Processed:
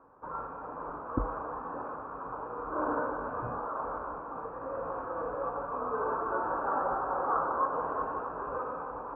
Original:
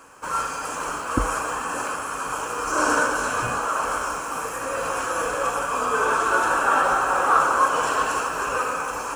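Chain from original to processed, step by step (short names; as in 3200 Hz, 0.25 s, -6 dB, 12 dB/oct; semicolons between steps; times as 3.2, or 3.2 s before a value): LPF 1100 Hz 24 dB/oct; gain -7.5 dB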